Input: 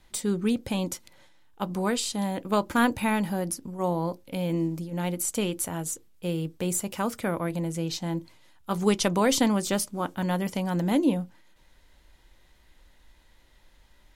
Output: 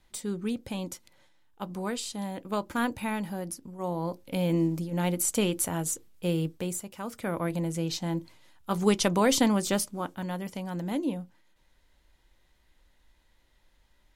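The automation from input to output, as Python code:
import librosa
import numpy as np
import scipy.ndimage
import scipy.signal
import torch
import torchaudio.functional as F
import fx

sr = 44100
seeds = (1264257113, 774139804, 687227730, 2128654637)

y = fx.gain(x, sr, db=fx.line((3.83, -6.0), (4.36, 1.5), (6.45, 1.5), (6.93, -11.0), (7.42, -0.5), (9.76, -0.5), (10.3, -7.0)))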